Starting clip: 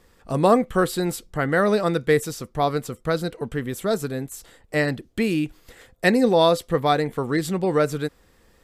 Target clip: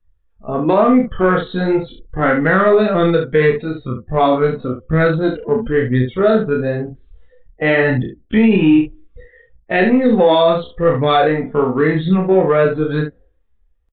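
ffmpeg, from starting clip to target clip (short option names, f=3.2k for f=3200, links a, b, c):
-filter_complex "[0:a]afftdn=nr=29:nf=-40,dynaudnorm=f=100:g=9:m=7.5dB,asplit=2[a][b];[b]volume=15.5dB,asoftclip=hard,volume=-15.5dB,volume=-7dB[c];[a][c]amix=inputs=2:normalize=0,aresample=8000,aresample=44100,flanger=delay=0.5:depth=4.4:regen=21:speed=1.6:shape=sinusoidal,atempo=0.62,asplit=2[d][e];[e]aecho=0:1:32|71:0.668|0.376[f];[d][f]amix=inputs=2:normalize=0,alimiter=level_in=6.5dB:limit=-1dB:release=50:level=0:latency=1,volume=-3dB"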